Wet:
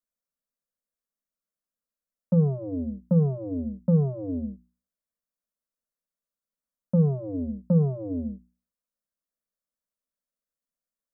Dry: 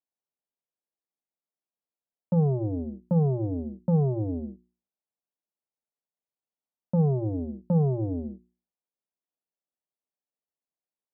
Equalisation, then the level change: bass shelf 100 Hz +12 dB; static phaser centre 540 Hz, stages 8; +2.0 dB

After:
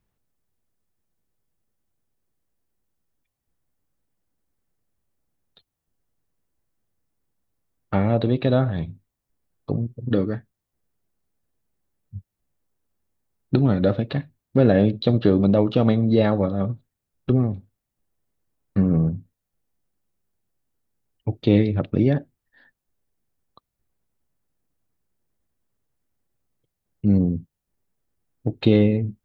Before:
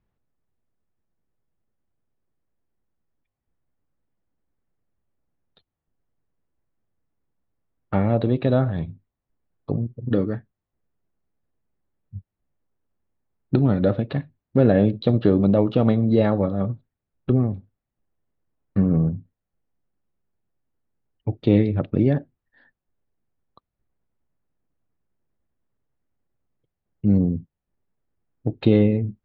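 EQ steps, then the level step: treble shelf 3.7 kHz +10.5 dB; 0.0 dB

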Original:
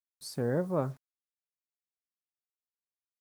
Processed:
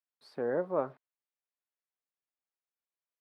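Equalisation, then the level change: high-pass 410 Hz 12 dB/octave; distance through air 430 m; +3.5 dB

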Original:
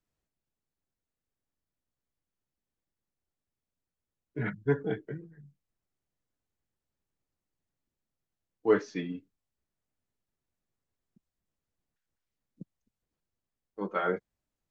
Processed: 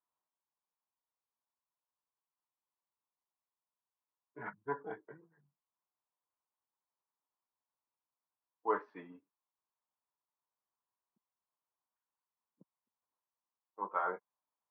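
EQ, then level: band-pass filter 1 kHz, Q 4.8; distance through air 300 m; +8.0 dB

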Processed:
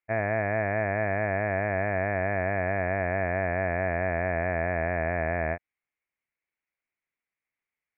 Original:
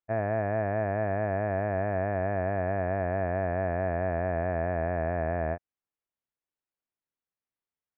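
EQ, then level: resonant low-pass 2.2 kHz, resonance Q 6.3; 0.0 dB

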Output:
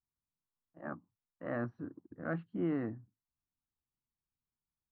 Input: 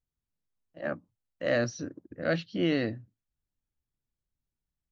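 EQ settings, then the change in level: four-pole ladder low-pass 1.3 kHz, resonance 40%; bass shelf 71 Hz -11 dB; peaking EQ 560 Hz -12.5 dB 0.68 oct; +4.5 dB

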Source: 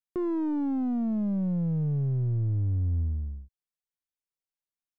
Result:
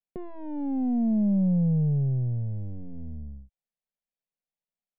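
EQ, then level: distance through air 470 m; static phaser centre 330 Hz, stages 6; +5.5 dB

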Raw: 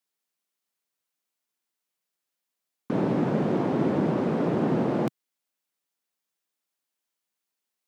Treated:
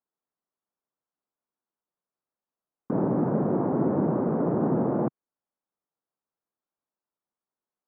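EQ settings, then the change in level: low-pass 1.3 kHz 24 dB/octave; 0.0 dB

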